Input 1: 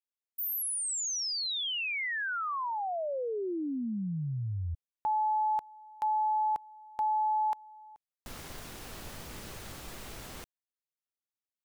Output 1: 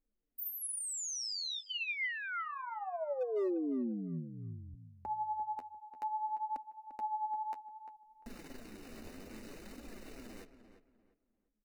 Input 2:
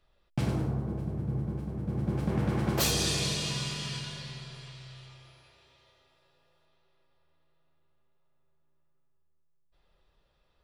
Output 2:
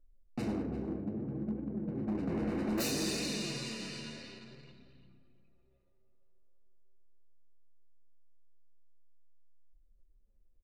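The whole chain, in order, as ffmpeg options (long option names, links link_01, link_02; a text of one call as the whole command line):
ffmpeg -i in.wav -filter_complex "[0:a]anlmdn=0.0631,equalizer=frequency=125:width_type=o:width=1:gain=-11,equalizer=frequency=250:width_type=o:width=1:gain=12,equalizer=frequency=500:width_type=o:width=1:gain=3,equalizer=frequency=1000:width_type=o:width=1:gain=-5,equalizer=frequency=2000:width_type=o:width=1:gain=3,asplit=2[link_01][link_02];[link_02]acompressor=mode=upward:threshold=-37dB:ratio=2.5:attack=0.36:release=68:knee=2.83:detection=peak,volume=0dB[link_03];[link_01][link_03]amix=inputs=2:normalize=0,flanger=delay=3.3:depth=9.9:regen=27:speed=0.61:shape=triangular,volume=21.5dB,asoftclip=hard,volume=-21.5dB,asuperstop=centerf=3300:order=8:qfactor=7,asplit=2[link_04][link_05];[link_05]adelay=347,lowpass=frequency=2200:poles=1,volume=-10.5dB,asplit=2[link_06][link_07];[link_07]adelay=347,lowpass=frequency=2200:poles=1,volume=0.29,asplit=2[link_08][link_09];[link_09]adelay=347,lowpass=frequency=2200:poles=1,volume=0.29[link_10];[link_06][link_08][link_10]amix=inputs=3:normalize=0[link_11];[link_04][link_11]amix=inputs=2:normalize=0,volume=-8.5dB" out.wav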